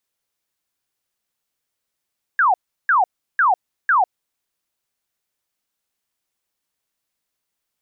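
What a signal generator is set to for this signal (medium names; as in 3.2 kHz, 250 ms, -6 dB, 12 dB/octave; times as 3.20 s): burst of laser zaps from 1.7 kHz, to 690 Hz, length 0.15 s sine, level -12 dB, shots 4, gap 0.35 s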